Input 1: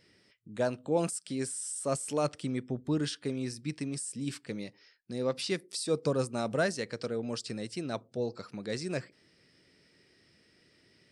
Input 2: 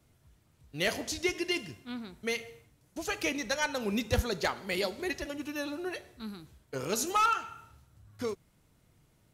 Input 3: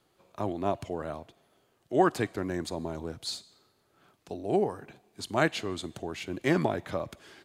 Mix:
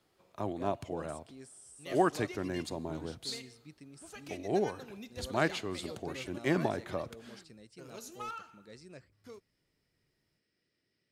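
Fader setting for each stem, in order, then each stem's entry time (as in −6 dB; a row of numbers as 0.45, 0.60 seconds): −17.0, −16.0, −4.0 decibels; 0.00, 1.05, 0.00 seconds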